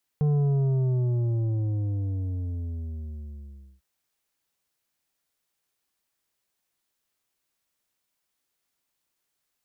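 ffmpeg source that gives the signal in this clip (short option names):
-f lavfi -i "aevalsrc='0.0944*clip((3.6-t)/3.55,0,1)*tanh(2.51*sin(2*PI*150*3.6/log(65/150)*(exp(log(65/150)*t/3.6)-1)))/tanh(2.51)':d=3.6:s=44100"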